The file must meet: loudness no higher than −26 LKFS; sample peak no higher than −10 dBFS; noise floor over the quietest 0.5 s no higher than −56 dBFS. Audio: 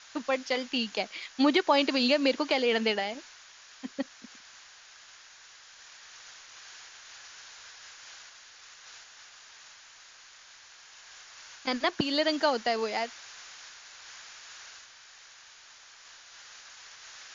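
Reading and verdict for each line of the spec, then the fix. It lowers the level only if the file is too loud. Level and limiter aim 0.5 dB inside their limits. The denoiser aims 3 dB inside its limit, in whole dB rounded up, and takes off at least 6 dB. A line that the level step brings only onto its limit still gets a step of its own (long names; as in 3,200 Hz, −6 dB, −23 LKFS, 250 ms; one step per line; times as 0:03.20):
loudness −28.0 LKFS: in spec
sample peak −11.0 dBFS: in spec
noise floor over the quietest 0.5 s −53 dBFS: out of spec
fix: broadband denoise 6 dB, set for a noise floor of −53 dBFS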